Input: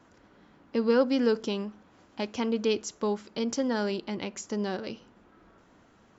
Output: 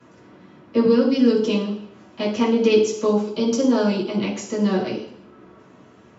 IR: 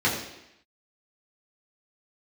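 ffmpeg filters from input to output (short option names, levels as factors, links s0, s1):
-filter_complex "[0:a]asettb=1/sr,asplit=3[s0][s1][s2];[s0]atrim=end=0.854[s3];[s1]atrim=start=0.85:end=1.39,asetpts=PTS-STARTPTS,afade=t=in:d=0.004:c=qsin,afade=t=out:st=0.536:d=0.004:c=qsin,acrossover=split=330|3000[s4][s5][s6];[s5]acompressor=threshold=0.01:ratio=2[s7];[s4][s7][s6]amix=inputs=3:normalize=0[s8];[s2]atrim=start=1.386[s9];[s3][s8]acrossfade=d=0.004:c1=hsin:c2=qsin[s10];[s10][s9]acrossfade=d=0.004:c1=qsin:c2=hsin,asettb=1/sr,asplit=3[s11][s12][s13];[s11]atrim=end=3.054[s14];[s12]atrim=start=3.05:end=4.21,asetpts=PTS-STARTPTS,afade=t=in:d=0.004:c=qsin,afade=t=out:st=1.156:d=0.004:c=qsin,equalizer=f=1900:t=o:w=0.29:g=-11.5[s15];[s13]atrim=start=4.206[s16];[s14][s15]acrossfade=d=0.004:c1=hsin:c2=qsin[s17];[s17][s16]acrossfade=d=0.004:c1=qsin:c2=hsin[s18];[1:a]atrim=start_sample=2205,asetrate=57330,aresample=44100[s19];[s18][s19]afir=irnorm=-1:irlink=0,volume=0.631"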